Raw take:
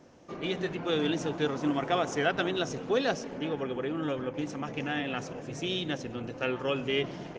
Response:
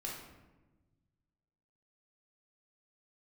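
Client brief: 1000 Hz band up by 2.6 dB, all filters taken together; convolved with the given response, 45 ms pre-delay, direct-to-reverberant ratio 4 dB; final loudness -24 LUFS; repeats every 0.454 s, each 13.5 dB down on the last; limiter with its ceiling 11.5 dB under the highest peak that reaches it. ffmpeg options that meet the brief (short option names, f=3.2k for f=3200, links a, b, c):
-filter_complex "[0:a]equalizer=f=1k:t=o:g=4,alimiter=limit=-22.5dB:level=0:latency=1,aecho=1:1:454|908:0.211|0.0444,asplit=2[a][b];[1:a]atrim=start_sample=2205,adelay=45[c];[b][c]afir=irnorm=-1:irlink=0,volume=-4dB[d];[a][d]amix=inputs=2:normalize=0,volume=8dB"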